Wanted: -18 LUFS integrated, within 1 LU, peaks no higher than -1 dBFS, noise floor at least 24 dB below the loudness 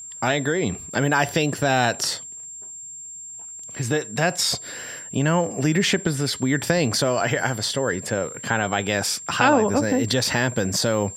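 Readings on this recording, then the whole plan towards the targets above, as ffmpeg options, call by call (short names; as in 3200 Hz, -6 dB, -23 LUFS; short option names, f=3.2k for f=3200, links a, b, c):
steady tone 7400 Hz; tone level -35 dBFS; loudness -22.0 LUFS; peak -3.5 dBFS; loudness target -18.0 LUFS
-> -af "bandreject=f=7.4k:w=30"
-af "volume=4dB,alimiter=limit=-1dB:level=0:latency=1"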